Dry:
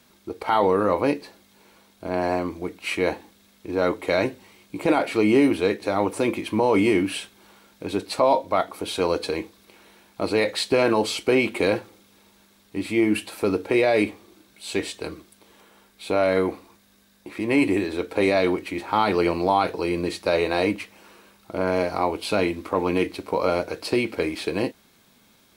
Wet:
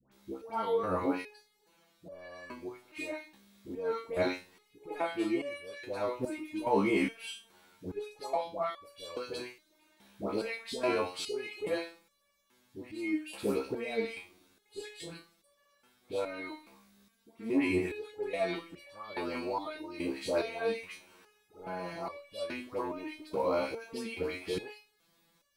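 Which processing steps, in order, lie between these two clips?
dispersion highs, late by 0.117 s, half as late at 1100 Hz; stepped resonator 2.4 Hz 67–570 Hz

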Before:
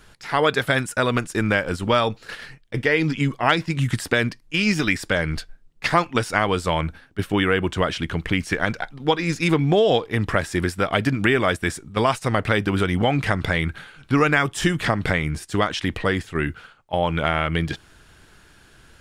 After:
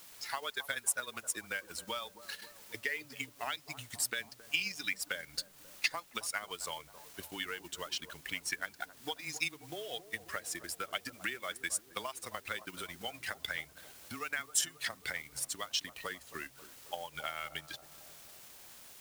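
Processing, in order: per-bin expansion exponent 1.5; notches 50/100/150 Hz; frequency shift -16 Hz; compressor 6:1, threshold -32 dBFS, peak gain reduction 17 dB; tilt +4.5 dB/oct; in parallel at -10 dB: requantised 6-bit, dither triangular; on the sum: transient shaper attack +3 dB, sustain -8 dB; analogue delay 0.269 s, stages 2048, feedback 66%, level -14 dB; gain -8 dB

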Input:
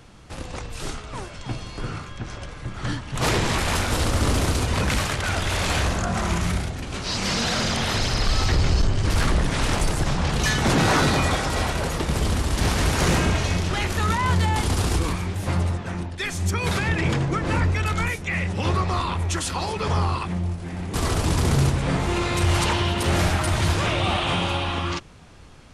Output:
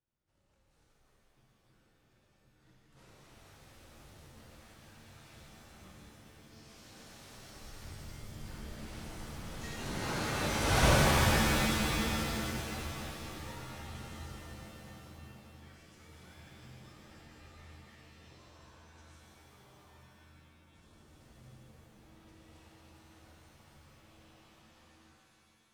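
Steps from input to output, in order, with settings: Doppler pass-by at 10.84, 27 m/s, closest 2.3 m; shimmer reverb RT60 2.8 s, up +7 st, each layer -2 dB, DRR -4.5 dB; gain -3.5 dB

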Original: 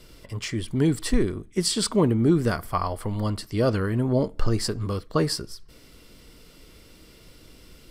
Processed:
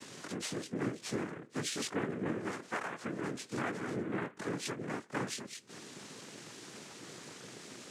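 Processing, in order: short-time reversal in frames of 49 ms; Butterworth band-stop 1500 Hz, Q 4.9; noise vocoder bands 3; HPF 140 Hz 12 dB/oct; compressor 3:1, threshold -48 dBFS, peak gain reduction 22.5 dB; gain +7.5 dB

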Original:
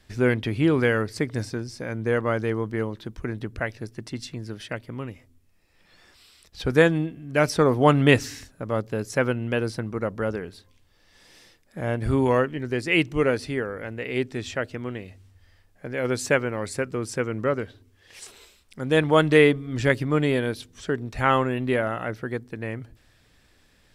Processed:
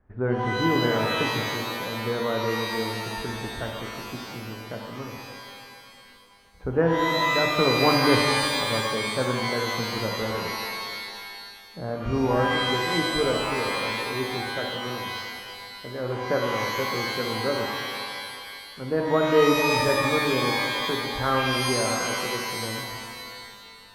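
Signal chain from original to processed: LPF 1400 Hz 24 dB/oct; notches 50/100/150/200/250/300/350 Hz; shimmer reverb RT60 2.1 s, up +12 st, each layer -2 dB, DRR 2 dB; gain -4 dB

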